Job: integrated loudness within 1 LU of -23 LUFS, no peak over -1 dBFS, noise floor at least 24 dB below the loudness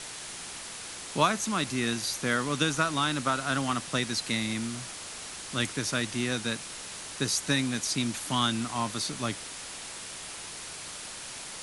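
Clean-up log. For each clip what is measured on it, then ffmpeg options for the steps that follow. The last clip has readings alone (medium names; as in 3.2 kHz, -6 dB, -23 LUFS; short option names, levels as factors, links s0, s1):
noise floor -41 dBFS; noise floor target -55 dBFS; loudness -30.5 LUFS; peak level -10.5 dBFS; loudness target -23.0 LUFS
-> -af "afftdn=nr=14:nf=-41"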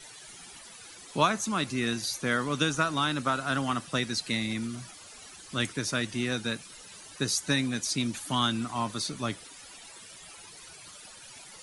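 noise floor -49 dBFS; noise floor target -54 dBFS
-> -af "afftdn=nr=6:nf=-49"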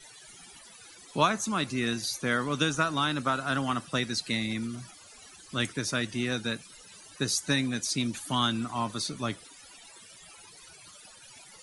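noise floor -52 dBFS; noise floor target -54 dBFS
-> -af "afftdn=nr=6:nf=-52"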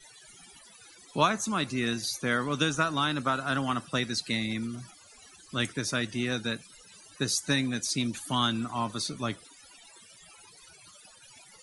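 noise floor -55 dBFS; loudness -29.5 LUFS; peak level -10.5 dBFS; loudness target -23.0 LUFS
-> -af "volume=2.11"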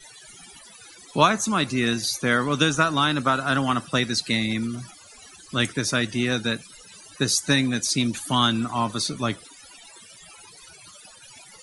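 loudness -23.0 LUFS; peak level -4.0 dBFS; noise floor -48 dBFS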